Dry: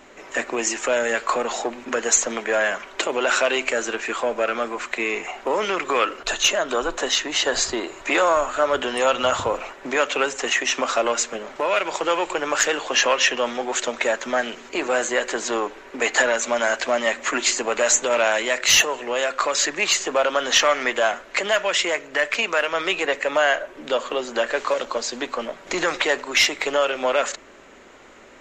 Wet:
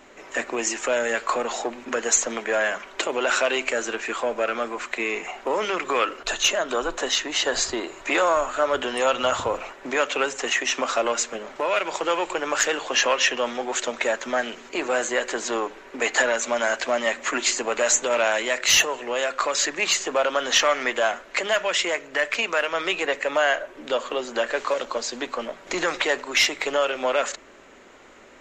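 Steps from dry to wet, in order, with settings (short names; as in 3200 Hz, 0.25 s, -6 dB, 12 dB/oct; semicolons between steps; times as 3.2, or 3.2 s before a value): notches 50/100/150/200 Hz; gain -2 dB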